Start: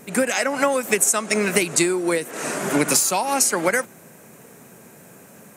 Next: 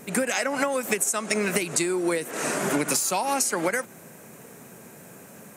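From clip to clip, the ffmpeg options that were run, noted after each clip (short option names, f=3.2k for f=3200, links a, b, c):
-af "acompressor=threshold=-21dB:ratio=6"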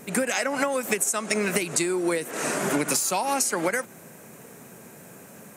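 -af anull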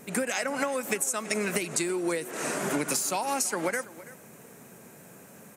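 -af "aecho=1:1:331:0.126,volume=-4dB"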